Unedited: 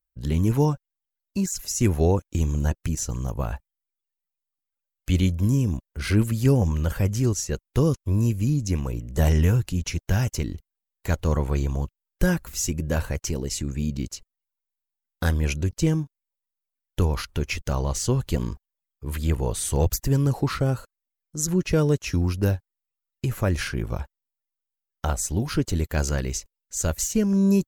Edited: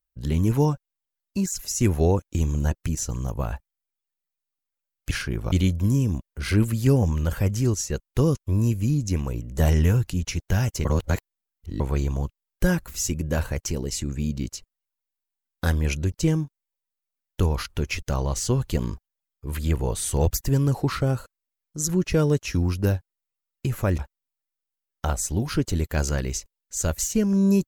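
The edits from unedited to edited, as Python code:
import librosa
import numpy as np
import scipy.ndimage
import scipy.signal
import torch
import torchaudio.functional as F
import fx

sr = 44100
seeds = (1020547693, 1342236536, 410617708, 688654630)

y = fx.edit(x, sr, fx.reverse_span(start_s=10.44, length_s=0.95),
    fx.move(start_s=23.57, length_s=0.41, to_s=5.11), tone=tone)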